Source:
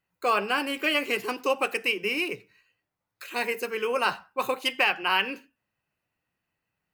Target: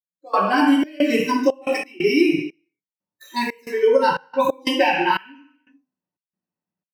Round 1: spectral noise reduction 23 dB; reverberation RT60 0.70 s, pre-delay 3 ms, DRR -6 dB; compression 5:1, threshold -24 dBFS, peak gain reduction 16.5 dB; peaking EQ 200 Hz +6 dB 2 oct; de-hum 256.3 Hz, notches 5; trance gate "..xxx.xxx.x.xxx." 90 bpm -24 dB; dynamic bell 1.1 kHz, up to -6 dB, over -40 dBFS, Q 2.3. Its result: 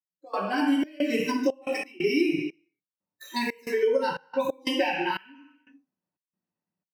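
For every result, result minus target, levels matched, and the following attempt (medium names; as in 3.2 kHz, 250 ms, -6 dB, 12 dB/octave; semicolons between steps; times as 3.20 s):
compression: peak gain reduction +7.5 dB; 1 kHz band -3.0 dB
spectral noise reduction 23 dB; reverberation RT60 0.70 s, pre-delay 3 ms, DRR -6 dB; compression 5:1, threshold -14.5 dBFS, peak gain reduction 9 dB; peaking EQ 200 Hz +6 dB 2 oct; de-hum 256.3 Hz, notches 5; trance gate "..xxx.xxx.x.xxx." 90 bpm -24 dB; dynamic bell 1.1 kHz, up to -6 dB, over -40 dBFS, Q 2.3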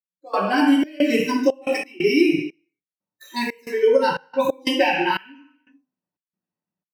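1 kHz band -2.5 dB
spectral noise reduction 23 dB; reverberation RT60 0.70 s, pre-delay 3 ms, DRR -6 dB; compression 5:1, threshold -14.5 dBFS, peak gain reduction 9 dB; peaking EQ 200 Hz +6 dB 2 oct; de-hum 256.3 Hz, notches 5; trance gate "..xxx.xxx.x.xxx." 90 bpm -24 dB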